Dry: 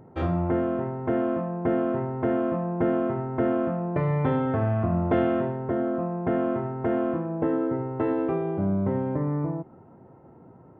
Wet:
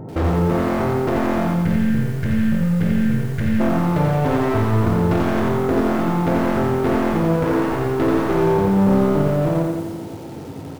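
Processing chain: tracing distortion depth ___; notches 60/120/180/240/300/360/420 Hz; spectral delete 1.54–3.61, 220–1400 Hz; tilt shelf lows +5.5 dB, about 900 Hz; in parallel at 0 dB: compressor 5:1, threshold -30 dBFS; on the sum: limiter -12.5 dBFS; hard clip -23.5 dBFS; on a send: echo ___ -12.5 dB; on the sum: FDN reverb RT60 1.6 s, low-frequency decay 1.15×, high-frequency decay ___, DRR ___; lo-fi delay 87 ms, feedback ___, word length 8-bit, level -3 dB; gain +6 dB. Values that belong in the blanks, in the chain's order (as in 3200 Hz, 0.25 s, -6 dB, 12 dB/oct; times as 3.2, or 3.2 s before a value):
0.16 ms, 0.117 s, 0.6×, 7.5 dB, 55%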